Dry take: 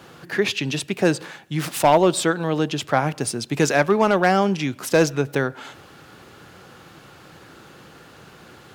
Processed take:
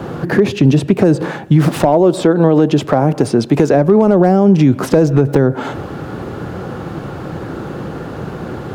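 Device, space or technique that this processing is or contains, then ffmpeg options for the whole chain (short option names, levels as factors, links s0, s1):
mastering chain: -filter_complex "[0:a]asettb=1/sr,asplit=3[s0][s1][s2];[s0]atrim=end=1.854[s3];[s1]atrim=start=1.85:end=3.72,asetpts=PTS-STARTPTS,afade=t=in:d=0.004:c=qsin,afade=t=out:st=1.866:d=0.004:c=qsin,lowshelf=f=180:g=-11[s4];[s2]atrim=start=3.716[s5];[s3][s4]acrossfade=d=0.004:c1=hsin:c2=qsin[s6];[s6][s5]acrossfade=d=0.004:c1=qsin:c2=hsin,equalizer=f=2500:t=o:w=0.77:g=-1.5,acrossover=split=680|5500[s7][s8][s9];[s7]acompressor=threshold=0.0891:ratio=4[s10];[s8]acompressor=threshold=0.0224:ratio=4[s11];[s9]acompressor=threshold=0.0126:ratio=4[s12];[s10][s11][s12]amix=inputs=3:normalize=0,acompressor=threshold=0.0447:ratio=2.5,tiltshelf=f=1400:g=10,asoftclip=type=hard:threshold=0.266,alimiter=level_in=5.62:limit=0.891:release=50:level=0:latency=1,volume=0.891"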